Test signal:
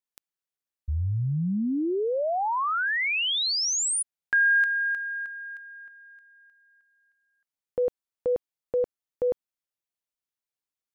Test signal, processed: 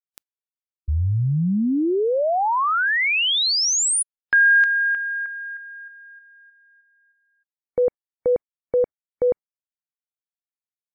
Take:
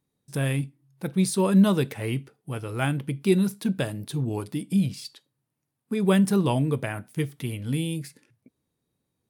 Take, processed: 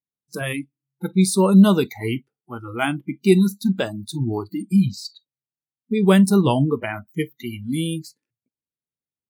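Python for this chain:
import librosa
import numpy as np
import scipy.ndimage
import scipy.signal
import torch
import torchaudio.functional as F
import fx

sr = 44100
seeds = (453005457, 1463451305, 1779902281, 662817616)

y = fx.noise_reduce_blind(x, sr, reduce_db=29)
y = F.gain(torch.from_numpy(y), 6.0).numpy()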